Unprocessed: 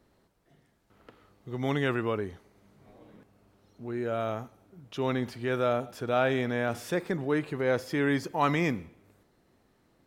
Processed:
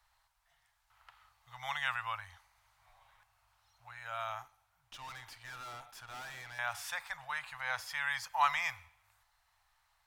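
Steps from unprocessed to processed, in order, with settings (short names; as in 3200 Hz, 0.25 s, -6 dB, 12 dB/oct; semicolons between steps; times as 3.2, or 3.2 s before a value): elliptic band-stop 100–850 Hz, stop band 50 dB; bell 97 Hz -14 dB 1.5 oct; 4.42–6.59 tube stage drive 44 dB, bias 0.65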